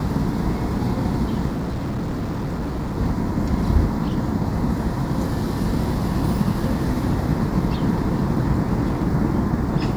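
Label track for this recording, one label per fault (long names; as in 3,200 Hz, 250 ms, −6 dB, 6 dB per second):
1.480000	2.980000	clipping −22 dBFS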